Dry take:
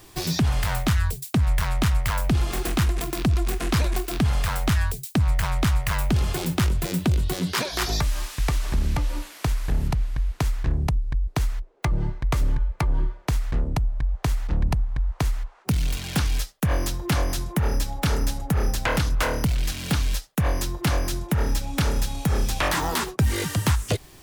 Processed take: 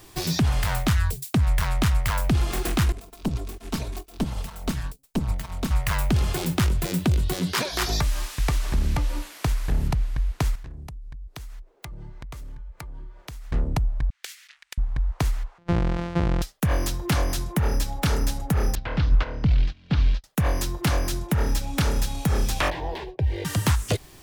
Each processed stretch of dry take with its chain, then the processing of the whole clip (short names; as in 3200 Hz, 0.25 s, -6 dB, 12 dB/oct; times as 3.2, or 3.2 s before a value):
2.92–5.71 minimum comb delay 4.5 ms + dynamic EQ 1800 Hz, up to -6 dB, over -46 dBFS, Q 1.4 + upward expander 2.5:1, over -38 dBFS
10.55–13.52 high shelf 5100 Hz +5 dB + compressor 5:1, threshold -37 dBFS
14.1–14.78 inverse Chebyshev high-pass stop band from 430 Hz, stop band 70 dB + Doppler distortion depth 0.15 ms
15.58–16.42 sample sorter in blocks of 256 samples + tape spacing loss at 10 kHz 24 dB + sustainer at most 51 dB/s
18.75–20.24 LPF 4400 Hz 24 dB/oct + low shelf 230 Hz +7.5 dB + upward expander 2.5:1, over -33 dBFS
22.7–23.45 air absorption 370 m + fixed phaser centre 530 Hz, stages 4
whole clip: dry